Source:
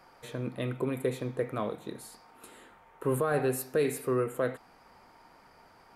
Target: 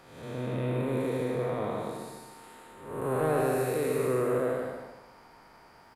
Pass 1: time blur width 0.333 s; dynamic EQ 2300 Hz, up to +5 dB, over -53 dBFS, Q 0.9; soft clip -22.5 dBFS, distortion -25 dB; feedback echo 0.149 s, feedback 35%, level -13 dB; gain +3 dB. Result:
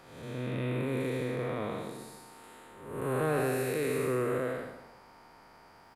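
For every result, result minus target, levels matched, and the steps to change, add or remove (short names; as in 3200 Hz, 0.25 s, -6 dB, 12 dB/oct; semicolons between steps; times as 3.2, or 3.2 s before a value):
echo-to-direct -8.5 dB; 2000 Hz band +3.5 dB
change: feedback echo 0.149 s, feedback 35%, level -4.5 dB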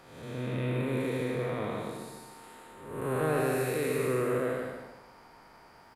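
2000 Hz band +4.0 dB
change: dynamic EQ 770 Hz, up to +5 dB, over -53 dBFS, Q 0.9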